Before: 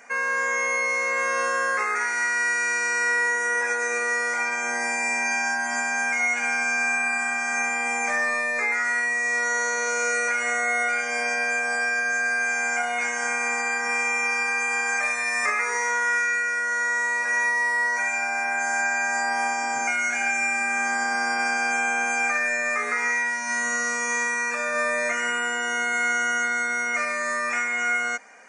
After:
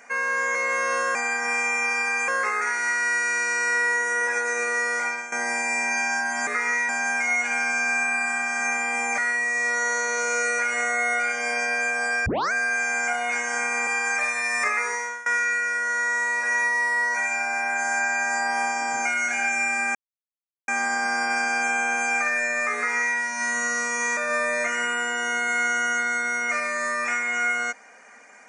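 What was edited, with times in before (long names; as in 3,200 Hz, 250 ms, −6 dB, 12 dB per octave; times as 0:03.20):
0:00.55–0:01.02: remove
0:04.37–0:04.66: fade out, to −13 dB
0:08.10–0:08.87: remove
0:11.95: tape start 0.26 s
0:13.56–0:14.69: move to 0:01.62
0:15.65–0:16.08: fade out, to −20 dB
0:20.77: splice in silence 0.73 s
0:22.84–0:23.26: duplicate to 0:05.81
0:24.26–0:24.62: remove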